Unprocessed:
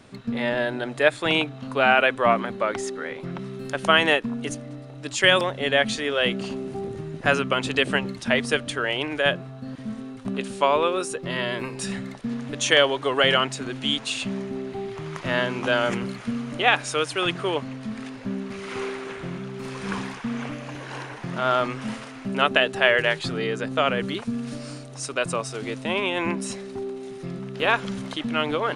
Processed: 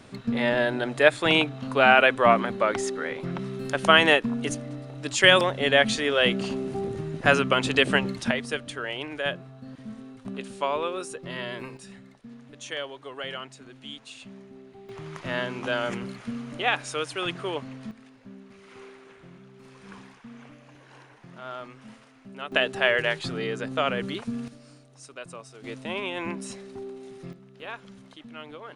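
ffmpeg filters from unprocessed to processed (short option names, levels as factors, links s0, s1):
-af "asetnsamples=n=441:p=0,asendcmd='8.31 volume volume -7dB;11.77 volume volume -16dB;14.89 volume volume -5.5dB;17.91 volume volume -16dB;22.52 volume volume -3.5dB;24.48 volume volume -15dB;25.64 volume volume -6.5dB;27.33 volume volume -17dB',volume=1.12"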